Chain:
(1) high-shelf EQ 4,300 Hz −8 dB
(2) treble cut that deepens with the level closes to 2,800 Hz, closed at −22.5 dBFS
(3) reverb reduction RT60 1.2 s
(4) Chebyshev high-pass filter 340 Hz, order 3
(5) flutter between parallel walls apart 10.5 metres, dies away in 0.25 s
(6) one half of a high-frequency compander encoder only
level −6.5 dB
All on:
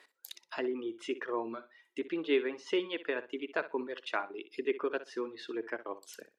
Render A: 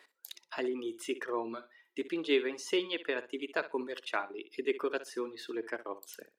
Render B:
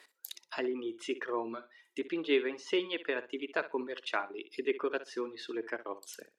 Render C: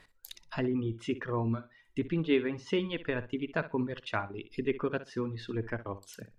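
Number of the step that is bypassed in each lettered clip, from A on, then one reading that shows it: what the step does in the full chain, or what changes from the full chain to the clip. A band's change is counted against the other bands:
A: 2, 4 kHz band +3.5 dB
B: 1, 4 kHz band +2.5 dB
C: 4, 250 Hz band +5.0 dB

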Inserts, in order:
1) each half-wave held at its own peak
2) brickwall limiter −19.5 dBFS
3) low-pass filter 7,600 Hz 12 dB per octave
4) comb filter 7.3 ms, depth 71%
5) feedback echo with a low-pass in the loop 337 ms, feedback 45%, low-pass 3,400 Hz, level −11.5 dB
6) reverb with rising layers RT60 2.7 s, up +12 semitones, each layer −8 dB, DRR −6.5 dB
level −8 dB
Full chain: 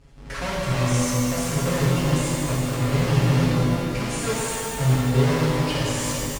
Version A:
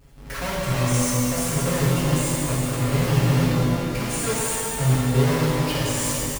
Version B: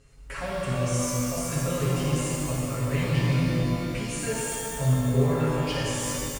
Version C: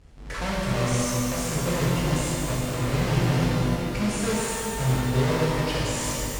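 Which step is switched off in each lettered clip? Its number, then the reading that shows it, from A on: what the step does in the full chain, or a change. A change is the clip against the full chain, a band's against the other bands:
3, 8 kHz band +3.5 dB
1, distortion level −5 dB
4, 125 Hz band −2.0 dB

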